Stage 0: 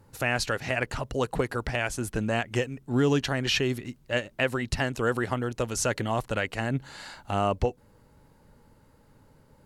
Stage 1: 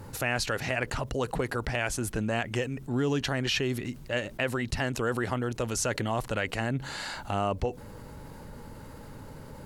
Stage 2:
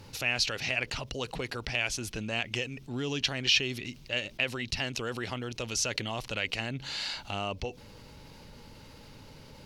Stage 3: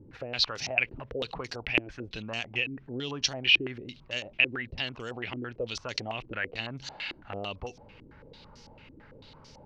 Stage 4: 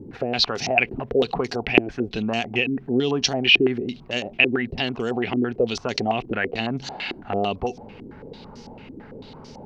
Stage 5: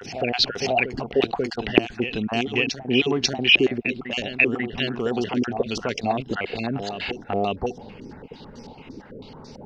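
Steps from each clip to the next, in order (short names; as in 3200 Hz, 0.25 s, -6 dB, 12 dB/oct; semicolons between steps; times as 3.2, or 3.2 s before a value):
fast leveller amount 50%; gain -5 dB
band shelf 3700 Hz +12 dB; gain -6.5 dB
stepped low-pass 9 Hz 330–5800 Hz; gain -4 dB
small resonant body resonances 230/390/710 Hz, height 11 dB, ringing for 25 ms; gain +5.5 dB
random spectral dropouts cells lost 21%; reverse echo 0.541 s -8.5 dB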